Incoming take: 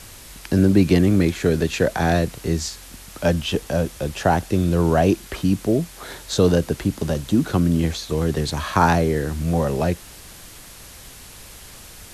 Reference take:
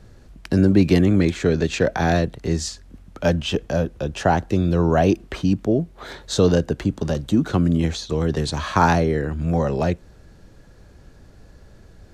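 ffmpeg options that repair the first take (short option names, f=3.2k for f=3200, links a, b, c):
-af "afwtdn=0.0089"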